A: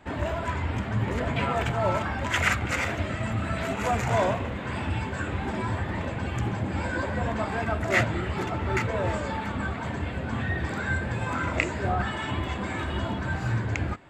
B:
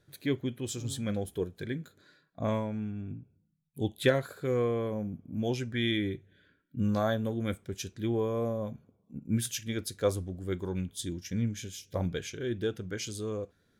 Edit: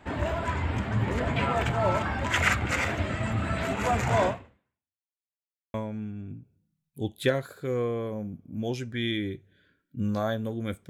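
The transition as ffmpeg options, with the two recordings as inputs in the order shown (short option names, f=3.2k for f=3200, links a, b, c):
-filter_complex "[0:a]apad=whole_dur=10.89,atrim=end=10.89,asplit=2[a][b];[a]atrim=end=5.09,asetpts=PTS-STARTPTS,afade=t=out:st=4.27:d=0.82:c=exp[c];[b]atrim=start=5.09:end=5.74,asetpts=PTS-STARTPTS,volume=0[d];[1:a]atrim=start=2.54:end=7.69,asetpts=PTS-STARTPTS,afade=t=in:d=0.004:c=hsin[e];[c][d][e]concat=n=3:v=0:a=1"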